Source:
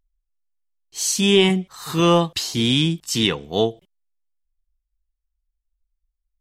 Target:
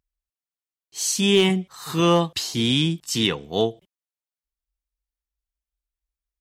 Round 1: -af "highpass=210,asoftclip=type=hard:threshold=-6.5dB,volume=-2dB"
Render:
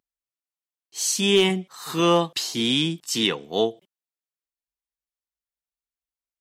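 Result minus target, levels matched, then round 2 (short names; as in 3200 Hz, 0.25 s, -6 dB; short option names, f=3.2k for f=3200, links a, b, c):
125 Hz band -4.5 dB
-af "highpass=61,asoftclip=type=hard:threshold=-6.5dB,volume=-2dB"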